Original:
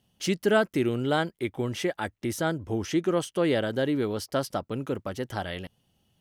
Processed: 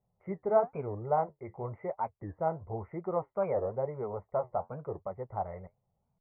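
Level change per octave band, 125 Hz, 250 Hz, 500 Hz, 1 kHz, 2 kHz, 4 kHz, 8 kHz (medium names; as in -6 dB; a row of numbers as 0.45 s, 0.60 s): -8.0 dB, -15.0 dB, -4.5 dB, 0.0 dB, -20.5 dB, under -40 dB, under -40 dB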